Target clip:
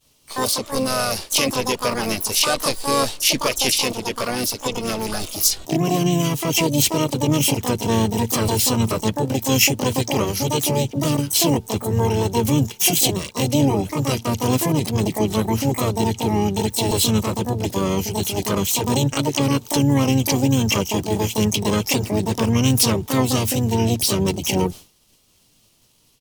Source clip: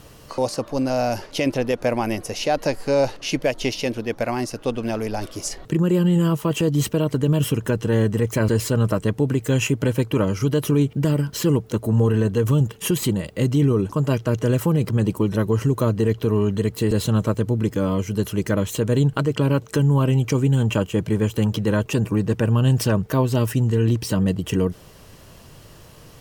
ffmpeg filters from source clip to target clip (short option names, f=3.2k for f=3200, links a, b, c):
-filter_complex "[0:a]highshelf=f=2.4k:t=q:w=1.5:g=11.5,asplit=4[a][b][c][d];[b]asetrate=33038,aresample=44100,atempo=1.33484,volume=-12dB[e];[c]asetrate=37084,aresample=44100,atempo=1.18921,volume=-8dB[f];[d]asetrate=88200,aresample=44100,atempo=0.5,volume=-1dB[g];[a][e][f][g]amix=inputs=4:normalize=0,agate=range=-33dB:threshold=-25dB:ratio=3:detection=peak,volume=-3.5dB"